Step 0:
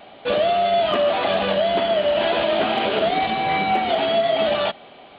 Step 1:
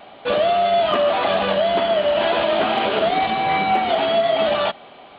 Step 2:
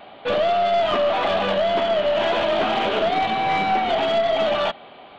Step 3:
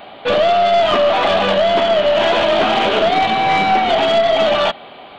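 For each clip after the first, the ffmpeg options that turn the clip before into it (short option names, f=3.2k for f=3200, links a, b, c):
-af "equalizer=f=1.1k:w=1.4:g=4"
-af "aeval=exprs='(tanh(4.47*val(0)+0.2)-tanh(0.2))/4.47':c=same"
-af "highshelf=f=4.9k:g=6,volume=6dB"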